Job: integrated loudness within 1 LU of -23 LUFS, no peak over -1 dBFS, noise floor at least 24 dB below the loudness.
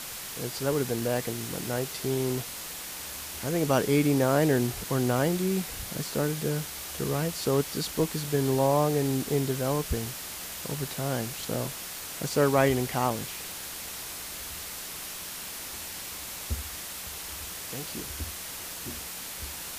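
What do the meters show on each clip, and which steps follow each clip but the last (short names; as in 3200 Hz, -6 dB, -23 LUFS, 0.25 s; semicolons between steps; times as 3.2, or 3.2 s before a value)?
dropouts 1; longest dropout 4.1 ms; noise floor -39 dBFS; noise floor target -54 dBFS; loudness -29.5 LUFS; peak -10.5 dBFS; loudness target -23.0 LUFS
-> interpolate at 13.1, 4.1 ms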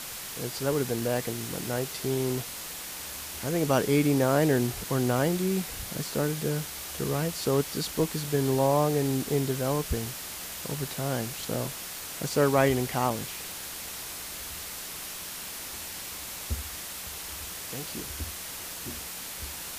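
dropouts 0; noise floor -39 dBFS; noise floor target -54 dBFS
-> denoiser 15 dB, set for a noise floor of -39 dBFS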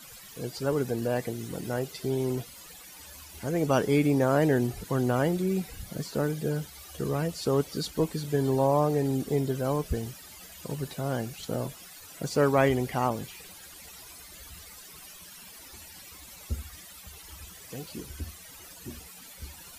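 noise floor -48 dBFS; noise floor target -53 dBFS
-> denoiser 6 dB, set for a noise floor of -48 dBFS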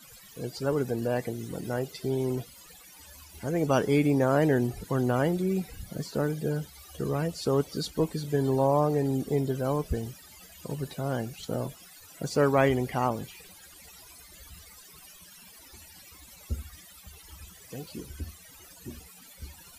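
noise floor -52 dBFS; noise floor target -53 dBFS
-> denoiser 6 dB, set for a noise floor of -52 dBFS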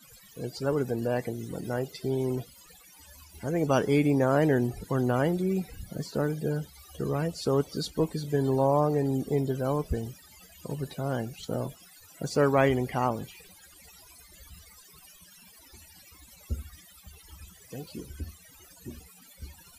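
noise floor -55 dBFS; loudness -29.0 LUFS; peak -10.5 dBFS; loudness target -23.0 LUFS
-> gain +6 dB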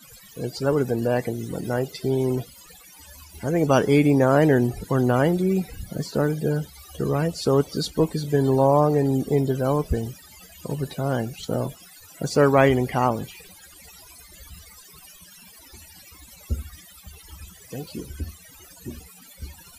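loudness -23.0 LUFS; peak -4.5 dBFS; noise floor -49 dBFS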